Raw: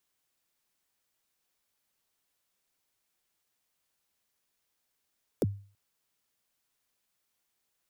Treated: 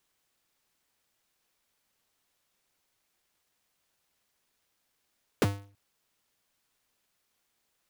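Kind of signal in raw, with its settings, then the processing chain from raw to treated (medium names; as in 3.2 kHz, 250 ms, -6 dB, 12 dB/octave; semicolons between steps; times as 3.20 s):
kick drum length 0.33 s, from 570 Hz, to 100 Hz, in 31 ms, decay 0.41 s, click on, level -20.5 dB
square wave that keeps the level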